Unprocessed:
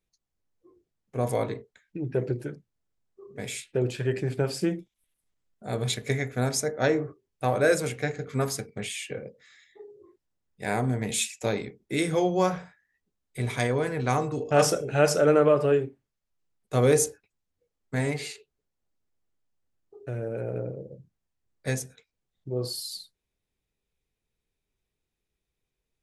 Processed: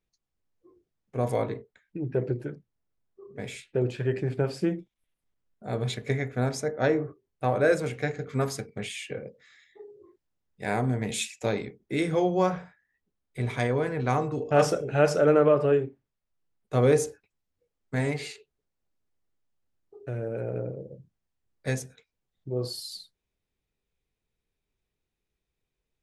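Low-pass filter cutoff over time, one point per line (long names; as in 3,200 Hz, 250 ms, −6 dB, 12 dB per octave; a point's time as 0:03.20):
low-pass filter 6 dB per octave
4,600 Hz
from 0:01.41 2,400 Hz
from 0:07.93 4,700 Hz
from 0:11.77 2,800 Hz
from 0:17.08 5,500 Hz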